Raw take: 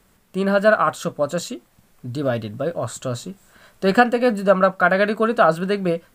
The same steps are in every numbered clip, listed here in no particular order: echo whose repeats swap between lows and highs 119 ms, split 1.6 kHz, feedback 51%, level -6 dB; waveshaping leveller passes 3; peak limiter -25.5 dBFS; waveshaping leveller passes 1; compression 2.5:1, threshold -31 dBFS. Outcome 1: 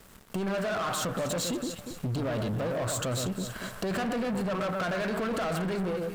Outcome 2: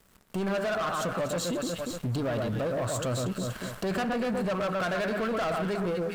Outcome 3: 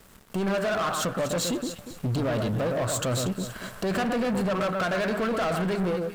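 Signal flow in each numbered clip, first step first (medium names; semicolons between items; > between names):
second waveshaping leveller > peak limiter > echo whose repeats swap between lows and highs > first waveshaping leveller > compression; second waveshaping leveller > echo whose repeats swap between lows and highs > compression > first waveshaping leveller > peak limiter; second waveshaping leveller > compression > peak limiter > echo whose repeats swap between lows and highs > first waveshaping leveller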